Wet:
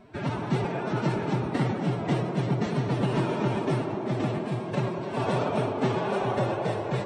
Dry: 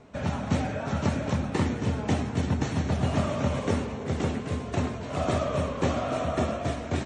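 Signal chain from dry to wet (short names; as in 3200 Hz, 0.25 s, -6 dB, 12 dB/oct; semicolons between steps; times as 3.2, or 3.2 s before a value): bell 6700 Hz -11.5 dB 0.39 oct; formant-preserving pitch shift +7.5 st; on a send: band-limited delay 99 ms, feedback 83%, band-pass 570 Hz, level -6 dB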